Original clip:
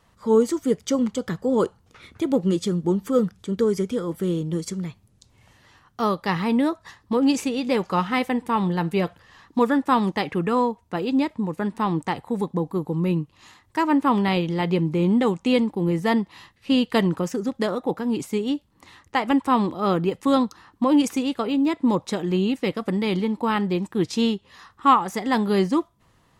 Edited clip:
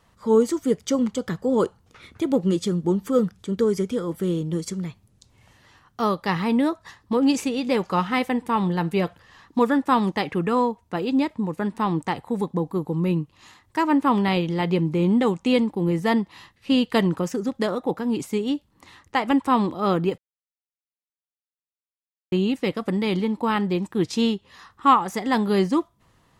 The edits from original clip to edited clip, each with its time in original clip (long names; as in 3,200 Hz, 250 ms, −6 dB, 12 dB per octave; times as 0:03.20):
0:20.18–0:22.32: silence